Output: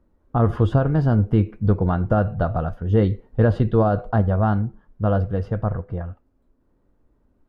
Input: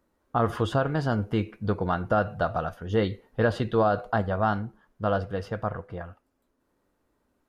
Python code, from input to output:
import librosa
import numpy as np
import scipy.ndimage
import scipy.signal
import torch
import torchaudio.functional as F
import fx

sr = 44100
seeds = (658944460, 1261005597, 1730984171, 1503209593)

y = fx.tilt_eq(x, sr, slope=-3.5)